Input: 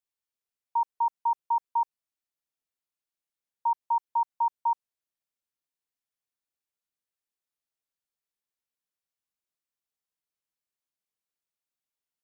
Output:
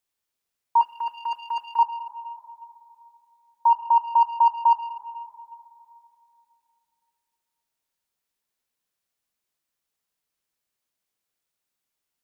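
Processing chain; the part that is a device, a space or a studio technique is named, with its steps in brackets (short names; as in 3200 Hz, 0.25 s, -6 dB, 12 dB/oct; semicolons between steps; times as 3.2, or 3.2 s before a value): saturated reverb return (on a send at -9 dB: reverb RT60 2.9 s, pre-delay 14 ms + soft clip -26.5 dBFS, distortion -13 dB); 0.81–1.79 on the sum: EQ curve 490 Hz 0 dB, 900 Hz -12 dB, 1500 Hz +6 dB; gain +8 dB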